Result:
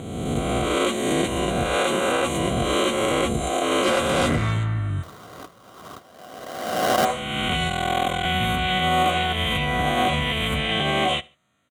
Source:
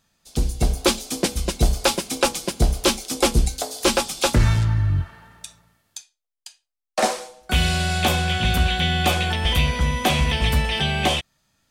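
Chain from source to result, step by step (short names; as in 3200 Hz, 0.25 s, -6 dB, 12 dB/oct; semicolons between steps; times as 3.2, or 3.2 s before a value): spectral swells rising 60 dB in 1.57 s; Butterworth band-stop 5100 Hz, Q 1.7; low shelf 130 Hz -5.5 dB; 3.83–4.53 hard clip -15.5 dBFS, distortion -18 dB; air absorption 52 m; 5.03–7.05 sample-rate reducer 2300 Hz, jitter 20%; limiter -12 dBFS, peak gain reduction 8 dB; HPF 64 Hz; notch comb 870 Hz; small resonant body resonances 740/1100/2000 Hz, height 6 dB; 7.68–8.25 ring modulator 21 Hz; feedback echo 72 ms, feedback 33%, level -23.5 dB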